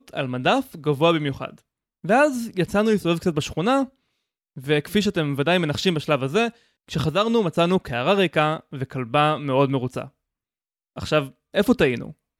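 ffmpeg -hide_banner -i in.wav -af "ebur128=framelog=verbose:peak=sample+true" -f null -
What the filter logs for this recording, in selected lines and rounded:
Integrated loudness:
  I:         -22.0 LUFS
  Threshold: -32.5 LUFS
Loudness range:
  LRA:         2.0 LU
  Threshold: -42.7 LUFS
  LRA low:   -23.7 LUFS
  LRA high:  -21.7 LUFS
Sample peak:
  Peak:       -5.7 dBFS
True peak:
  Peak:       -5.7 dBFS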